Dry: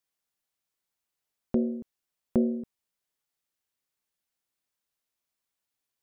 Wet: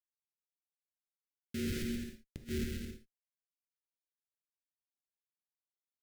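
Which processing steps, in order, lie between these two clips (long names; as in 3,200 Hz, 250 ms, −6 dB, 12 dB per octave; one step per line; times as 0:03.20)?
phase distortion by the signal itself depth 0.45 ms
flanger 0.76 Hz, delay 9.5 ms, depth 9.8 ms, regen +17%
comparator with hysteresis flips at −41.5 dBFS
Butterworth band-reject 880 Hz, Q 0.68
flat-topped bell 820 Hz −12 dB 1.3 octaves
gate with flip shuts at −33 dBFS, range −37 dB
bouncing-ball delay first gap 130 ms, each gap 0.65×, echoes 5
reverb whose tail is shaped and stops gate 100 ms flat, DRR 6 dB
level +4.5 dB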